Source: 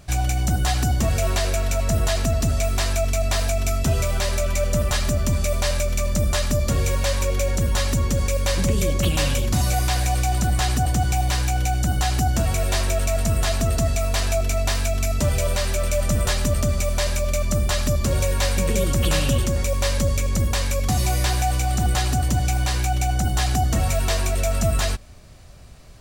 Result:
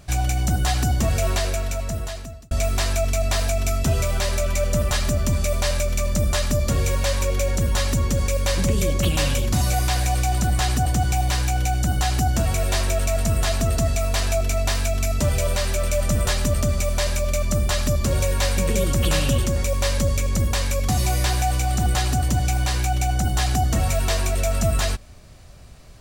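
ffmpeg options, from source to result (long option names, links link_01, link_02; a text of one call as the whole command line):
ffmpeg -i in.wav -filter_complex "[0:a]asplit=2[link_01][link_02];[link_01]atrim=end=2.51,asetpts=PTS-STARTPTS,afade=type=out:start_time=1.31:duration=1.2[link_03];[link_02]atrim=start=2.51,asetpts=PTS-STARTPTS,afade=type=in:duration=0.004:curve=hsin[link_04];[link_03][link_04]concat=n=2:v=0:a=1" out.wav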